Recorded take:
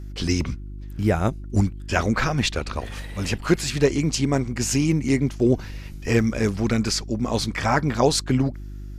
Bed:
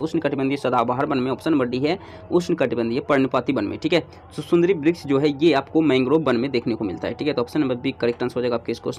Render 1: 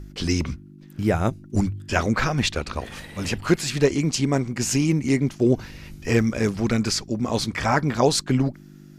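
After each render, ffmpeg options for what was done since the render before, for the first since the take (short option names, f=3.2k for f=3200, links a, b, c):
-af "bandreject=f=50:t=h:w=4,bandreject=f=100:t=h:w=4"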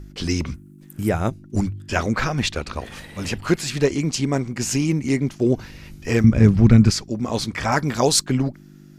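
-filter_complex "[0:a]asettb=1/sr,asplit=3[a][b][c];[a]atrim=end=0.544[d];[b]atrim=start=0.54:end=1.09,asetpts=PTS-STARTPTS,afade=t=in:d=0.004:c=qsin,afade=t=out:st=0.546:d=0.004:c=qsin,highshelf=f=6.7k:t=q:w=1.5:g=11[e];[c]atrim=start=1.086[f];[d][e]acrossfade=d=0.004:c1=hsin:c2=qsin[g];[g][f]acrossfade=d=0.004:c1=qsin:c2=hsin,asettb=1/sr,asplit=3[h][i][j];[h]atrim=end=6.244[k];[i]atrim=start=6.24:end=6.91,asetpts=PTS-STARTPTS,afade=t=in:d=0.004:c=qsin,afade=t=out:st=0.666:d=0.004:c=qsin,bass=f=250:g=15,treble=f=4k:g=-7[l];[j]atrim=start=6.906[m];[k][l]acrossfade=d=0.004:c1=hsin:c2=qsin[n];[n][m]acrossfade=d=0.004:c1=qsin:c2=hsin,asettb=1/sr,asplit=3[o][p][q];[o]atrim=end=7.724[r];[p]atrim=start=7.72:end=8.26,asetpts=PTS-STARTPTS,afade=t=in:d=0.004:c=qsin,afade=t=out:st=0.536:d=0.004:c=qsin,highshelf=f=5k:g=10[s];[q]atrim=start=8.256[t];[r][s]acrossfade=d=0.004:c1=hsin:c2=qsin[u];[u][t]acrossfade=d=0.004:c1=qsin:c2=hsin"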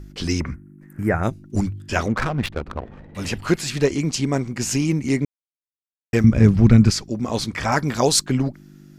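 -filter_complex "[0:a]asettb=1/sr,asplit=3[a][b][c];[a]atrim=end=0.404[d];[b]atrim=start=0.4:end=1.23,asetpts=PTS-STARTPTS,afade=t=in:d=0.004:c=qsin,afade=t=out:st=0.826:d=0.004:c=qsin,highshelf=f=2.5k:t=q:w=3:g=-10.5[e];[c]atrim=start=1.226[f];[d][e]acrossfade=d=0.004:c1=hsin:c2=qsin[g];[g][f]acrossfade=d=0.004:c1=qsin:c2=hsin,asettb=1/sr,asplit=3[h][i][j];[h]atrim=end=2.084[k];[i]atrim=start=2.08:end=3.15,asetpts=PTS-STARTPTS,afade=t=in:d=0.004:c=qsin,afade=t=out:st=1.066:d=0.004:c=qsin,adynamicsmooth=sensitivity=1.5:basefreq=610[l];[j]atrim=start=3.146[m];[k][l]acrossfade=d=0.004:c1=hsin:c2=qsin[n];[n][m]acrossfade=d=0.004:c1=qsin:c2=hsin,asplit=3[o][p][q];[o]atrim=end=5.25,asetpts=PTS-STARTPTS,afade=t=out:st=5.246:d=0.004:c=hsin[r];[p]atrim=start=5.25:end=6.13,asetpts=PTS-STARTPTS,volume=0[s];[q]atrim=start=6.13,asetpts=PTS-STARTPTS,afade=t=in:d=0.004:c=hsin[t];[r][s][t]concat=n=3:v=0:a=1"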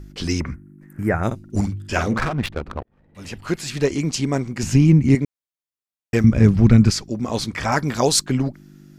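-filter_complex "[0:a]asettb=1/sr,asplit=3[a][b][c];[a]atrim=end=1.264[d];[b]atrim=start=1.26:end=2.33,asetpts=PTS-STARTPTS,afade=t=in:d=0.004:c=qsin,afade=t=out:st=1.066:d=0.004:c=qsin,asplit=2[e][f];[f]adelay=49,volume=-7dB[g];[e][g]amix=inputs=2:normalize=0,atrim=end_sample=47187[h];[c]atrim=start=2.326[i];[d][h]acrossfade=d=0.004:c1=hsin:c2=qsin[j];[j][i]acrossfade=d=0.004:c1=qsin:c2=hsin,asettb=1/sr,asplit=3[k][l][m];[k]atrim=end=4.634[n];[l]atrim=start=4.63:end=5.15,asetpts=PTS-STARTPTS,afade=t=in:d=0.004:c=qsin,afade=t=out:st=0.516:d=0.004:c=qsin,bass=f=250:g=12,treble=f=4k:g=-7[o];[m]atrim=start=5.146[p];[n][o]acrossfade=d=0.004:c1=hsin:c2=qsin[q];[q][p]acrossfade=d=0.004:c1=qsin:c2=hsin,asplit=2[r][s];[r]atrim=end=2.83,asetpts=PTS-STARTPTS,afade=t=out:st=2.826:d=0.004:c=hsin[t];[s]atrim=start=2.83,asetpts=PTS-STARTPTS,afade=t=in:d=1.13[u];[t][u]concat=n=2:v=0:a=1"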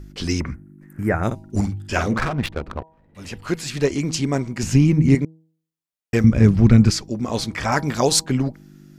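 -af "bandreject=f=160.1:t=h:w=4,bandreject=f=320.2:t=h:w=4,bandreject=f=480.3:t=h:w=4,bandreject=f=640.4:t=h:w=4,bandreject=f=800.5:t=h:w=4,bandreject=f=960.6:t=h:w=4"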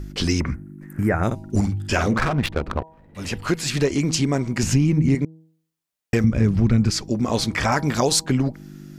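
-filter_complex "[0:a]asplit=2[a][b];[b]alimiter=limit=-12dB:level=0:latency=1:release=76,volume=0dB[c];[a][c]amix=inputs=2:normalize=0,acompressor=threshold=-20dB:ratio=2"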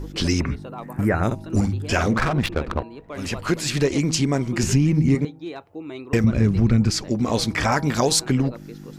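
-filter_complex "[1:a]volume=-17dB[a];[0:a][a]amix=inputs=2:normalize=0"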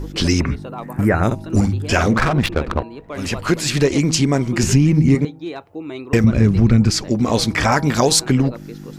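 -af "volume=4.5dB"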